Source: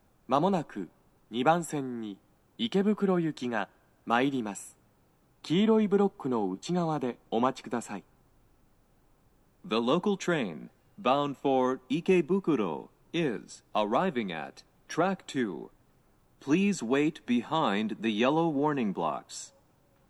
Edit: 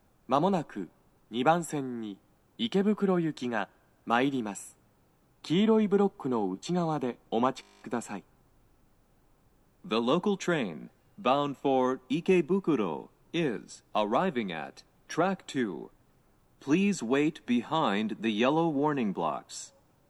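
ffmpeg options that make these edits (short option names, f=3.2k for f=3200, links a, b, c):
-filter_complex "[0:a]asplit=11[a][b][c][d][e][f][g][h][i][j][k];[a]atrim=end=7.632[l];[b]atrim=start=7.608:end=7.632[m];[c]atrim=start=7.608:end=7.632[n];[d]atrim=start=7.608:end=7.632[o];[e]atrim=start=7.608:end=7.632[p];[f]atrim=start=7.608:end=7.632[q];[g]atrim=start=7.608:end=7.632[r];[h]atrim=start=7.608:end=7.632[s];[i]atrim=start=7.608:end=7.632[t];[j]atrim=start=7.608:end=7.632[u];[k]atrim=start=7.608[v];[l][m]acrossfade=d=0.004:c1=hsin:c2=hsin[w];[w][n]acrossfade=d=0.004:c1=hsin:c2=hsin[x];[x][o]acrossfade=d=0.004:c1=hsin:c2=hsin[y];[y][p]acrossfade=d=0.004:c1=hsin:c2=hsin[z];[z][q]acrossfade=d=0.004:c1=hsin:c2=hsin[aa];[aa][r]acrossfade=d=0.004:c1=hsin:c2=hsin[ab];[ab][s]acrossfade=d=0.004:c1=hsin:c2=hsin[ac];[ac][t]acrossfade=d=0.004:c1=hsin:c2=hsin[ad];[ad][u]acrossfade=d=0.004:c1=hsin:c2=hsin[ae];[ae][v]acrossfade=d=0.004:c1=hsin:c2=hsin"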